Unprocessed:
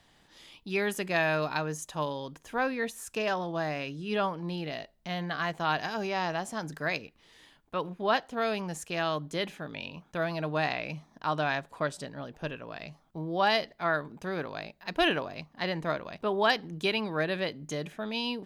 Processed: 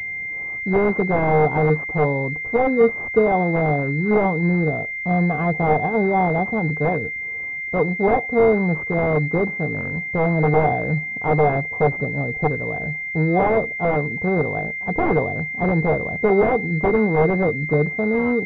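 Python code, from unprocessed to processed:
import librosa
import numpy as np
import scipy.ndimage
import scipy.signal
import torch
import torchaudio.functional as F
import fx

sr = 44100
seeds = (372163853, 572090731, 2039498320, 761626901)

y = fx.peak_eq(x, sr, hz=100.0, db=14.5, octaves=2.2)
y = (np.mod(10.0 ** (18.0 / 20.0) * y + 1.0, 2.0) - 1.0) / 10.0 ** (18.0 / 20.0)
y = fx.small_body(y, sr, hz=(460.0, 740.0), ring_ms=45, db=11)
y = fx.pwm(y, sr, carrier_hz=2100.0)
y = F.gain(torch.from_numpy(y), 7.5).numpy()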